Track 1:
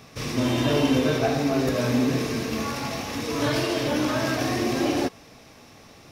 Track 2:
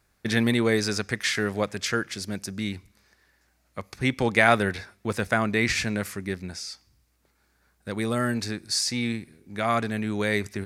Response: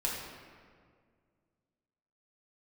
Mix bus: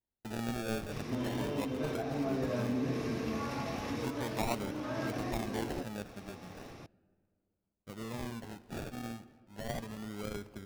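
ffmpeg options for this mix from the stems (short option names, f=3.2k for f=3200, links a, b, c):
-filter_complex "[0:a]acompressor=threshold=-37dB:ratio=2,highshelf=f=2.6k:g=-9.5,adelay=750,volume=0dB[a];[1:a]agate=range=-13dB:threshold=-51dB:ratio=16:detection=peak,acrusher=samples=34:mix=1:aa=0.000001:lfo=1:lforange=20.4:lforate=0.36,volume=-15.5dB,asplit=3[b][c][d];[c]volume=-17dB[e];[d]apad=whole_len=302549[f];[a][f]sidechaincompress=threshold=-40dB:ratio=8:attack=27:release=618[g];[2:a]atrim=start_sample=2205[h];[e][h]afir=irnorm=-1:irlink=0[i];[g][b][i]amix=inputs=3:normalize=0"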